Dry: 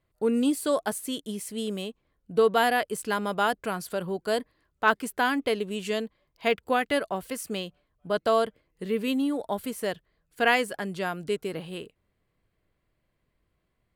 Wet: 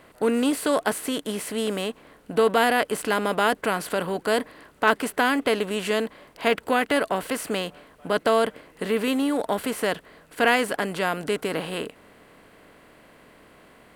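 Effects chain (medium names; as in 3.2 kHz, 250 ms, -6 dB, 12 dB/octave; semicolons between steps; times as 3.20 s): spectral levelling over time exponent 0.6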